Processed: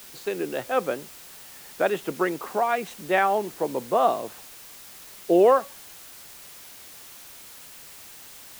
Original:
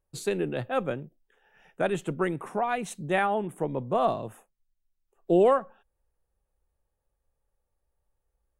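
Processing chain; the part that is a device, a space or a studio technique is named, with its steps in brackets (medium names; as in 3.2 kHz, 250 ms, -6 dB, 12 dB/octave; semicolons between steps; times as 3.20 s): dictaphone (band-pass 310–4000 Hz; level rider gain up to 4.5 dB; wow and flutter; white noise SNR 18 dB)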